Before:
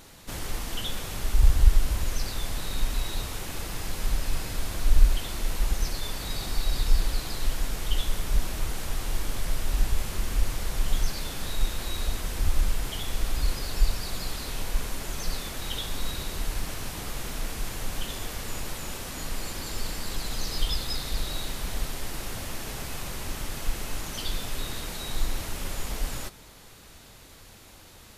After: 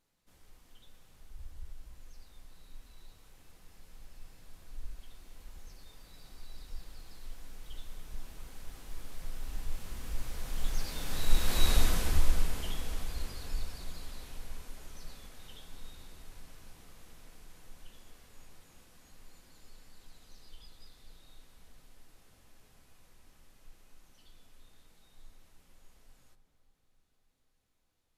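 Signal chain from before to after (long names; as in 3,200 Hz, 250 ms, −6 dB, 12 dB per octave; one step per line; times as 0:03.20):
source passing by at 0:11.72, 9 m/s, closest 2.5 metres
feedback echo with a low-pass in the loop 288 ms, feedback 72%, low-pass 2,000 Hz, level −12.5 dB
on a send at −10.5 dB: convolution reverb RT60 0.25 s, pre-delay 4 ms
on the sum: level +3 dB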